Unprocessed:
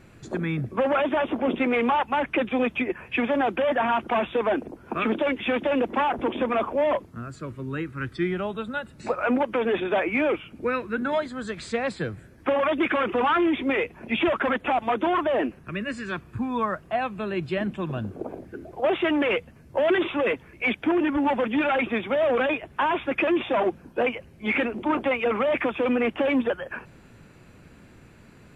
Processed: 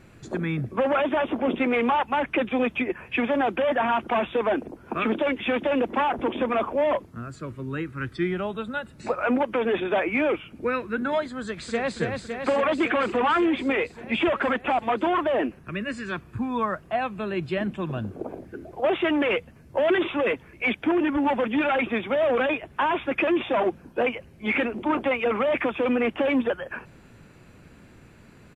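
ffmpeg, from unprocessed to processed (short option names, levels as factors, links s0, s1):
-filter_complex "[0:a]asplit=2[s0][s1];[s1]afade=t=in:st=11.4:d=0.01,afade=t=out:st=11.96:d=0.01,aecho=0:1:280|560|840|1120|1400|1680|1960|2240|2520|2800|3080|3360:0.595662|0.47653|0.381224|0.304979|0.243983|0.195187|0.156149|0.124919|0.0999355|0.0799484|0.0639587|0.051167[s2];[s0][s2]amix=inputs=2:normalize=0"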